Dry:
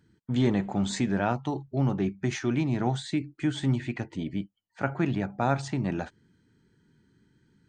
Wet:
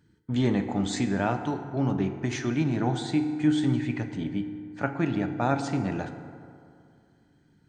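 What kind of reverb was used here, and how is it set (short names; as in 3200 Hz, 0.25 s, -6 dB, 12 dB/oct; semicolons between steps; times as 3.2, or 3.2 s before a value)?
FDN reverb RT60 2.4 s, low-frequency decay 0.9×, high-frequency decay 0.45×, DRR 7 dB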